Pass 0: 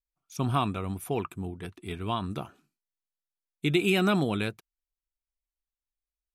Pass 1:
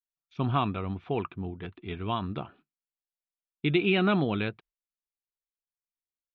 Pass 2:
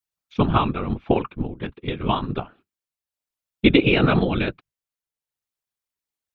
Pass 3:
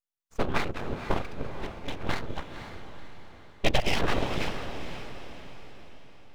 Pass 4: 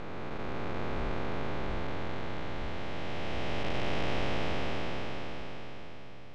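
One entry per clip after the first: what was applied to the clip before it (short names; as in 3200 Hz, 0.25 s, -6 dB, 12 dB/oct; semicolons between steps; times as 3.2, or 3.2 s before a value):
gate -56 dBFS, range -20 dB; steep low-pass 3700 Hz 36 dB/oct
whisperiser; transient shaper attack +6 dB, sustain -3 dB; gain +6 dB
full-wave rectifier; on a send: diffused feedback echo 0.509 s, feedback 46%, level -9 dB; on the sum: gain -6 dB
time blur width 1.46 s; air absorption 83 m; gain +2.5 dB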